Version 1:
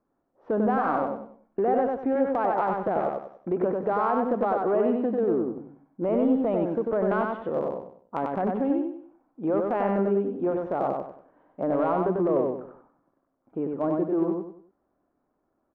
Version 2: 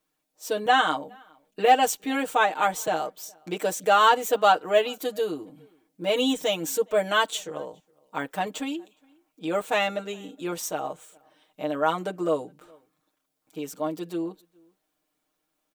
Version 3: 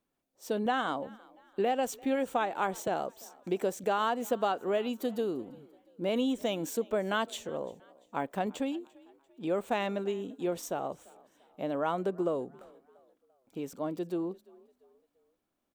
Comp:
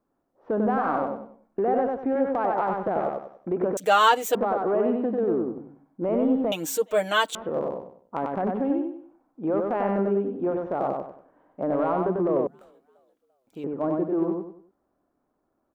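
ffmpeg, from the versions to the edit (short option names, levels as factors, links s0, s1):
-filter_complex "[1:a]asplit=2[s0][s1];[0:a]asplit=4[s2][s3][s4][s5];[s2]atrim=end=3.772[s6];[s0]atrim=start=3.768:end=4.352[s7];[s3]atrim=start=4.348:end=6.522[s8];[s1]atrim=start=6.518:end=7.352[s9];[s4]atrim=start=7.348:end=12.472[s10];[2:a]atrim=start=12.468:end=13.642[s11];[s5]atrim=start=13.638[s12];[s6][s7]acrossfade=d=0.004:c1=hsin:c2=hsin[s13];[s13][s8]acrossfade=d=0.004:c1=hsin:c2=hsin[s14];[s14][s9]acrossfade=d=0.004:c1=hsin:c2=hsin[s15];[s15][s10]acrossfade=d=0.004:c1=hsin:c2=hsin[s16];[s16][s11]acrossfade=d=0.004:c1=hsin:c2=hsin[s17];[s17][s12]acrossfade=d=0.004:c1=hsin:c2=hsin"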